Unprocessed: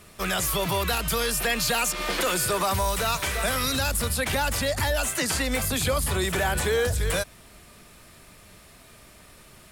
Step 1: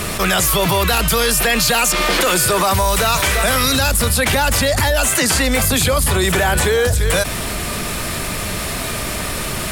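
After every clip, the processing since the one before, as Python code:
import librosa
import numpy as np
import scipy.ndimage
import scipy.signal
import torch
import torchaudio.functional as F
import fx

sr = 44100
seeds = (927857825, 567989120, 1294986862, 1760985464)

y = fx.env_flatten(x, sr, amount_pct=70)
y = y * librosa.db_to_amplitude(7.5)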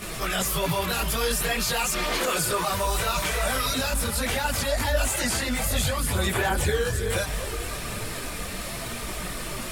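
y = fx.echo_alternate(x, sr, ms=258, hz=1200.0, feedback_pct=72, wet_db=-9.5)
y = fx.chorus_voices(y, sr, voices=4, hz=0.58, base_ms=21, depth_ms=4.7, mix_pct=65)
y = y * librosa.db_to_amplitude(-8.0)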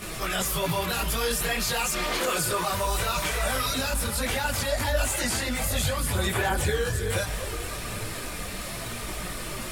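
y = fx.rev_fdn(x, sr, rt60_s=0.58, lf_ratio=1.0, hf_ratio=0.9, size_ms=56.0, drr_db=12.5)
y = y * librosa.db_to_amplitude(-1.5)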